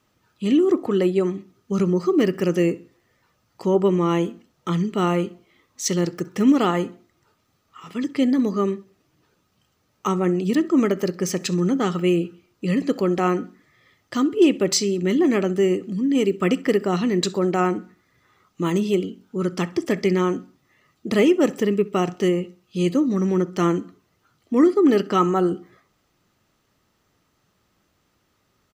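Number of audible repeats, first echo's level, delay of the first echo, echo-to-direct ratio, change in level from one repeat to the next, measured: 2, -23.0 dB, 65 ms, -22.5 dB, -8.0 dB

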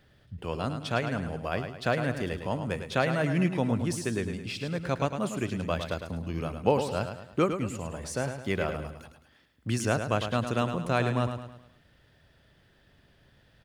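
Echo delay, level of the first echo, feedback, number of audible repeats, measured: 106 ms, -8.0 dB, 43%, 4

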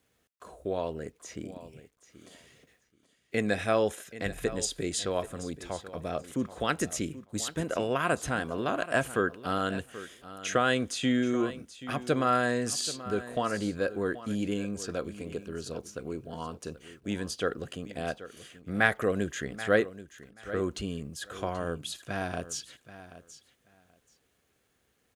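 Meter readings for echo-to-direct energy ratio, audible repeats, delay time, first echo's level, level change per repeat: -15.0 dB, 2, 781 ms, -15.0 dB, -15.5 dB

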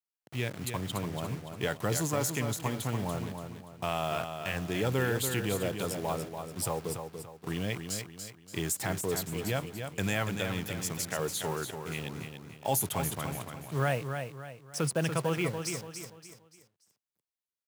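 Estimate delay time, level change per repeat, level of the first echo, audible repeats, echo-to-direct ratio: 288 ms, -8.5 dB, -7.0 dB, 4, -6.5 dB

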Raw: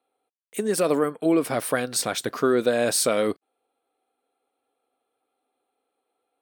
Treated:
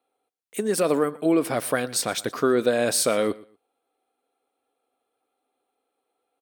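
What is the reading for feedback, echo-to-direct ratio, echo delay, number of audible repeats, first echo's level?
21%, -21.0 dB, 119 ms, 2, -21.0 dB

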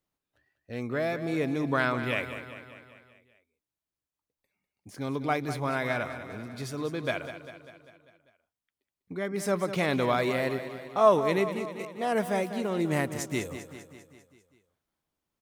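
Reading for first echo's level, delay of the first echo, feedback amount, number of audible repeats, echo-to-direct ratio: -11.0 dB, 198 ms, 57%, 5, -9.5 dB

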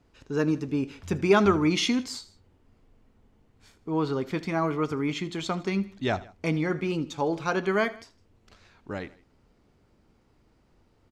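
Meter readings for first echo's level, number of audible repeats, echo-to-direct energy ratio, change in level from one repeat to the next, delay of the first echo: -19.0 dB, 2, -18.0 dB, -5.0 dB, 79 ms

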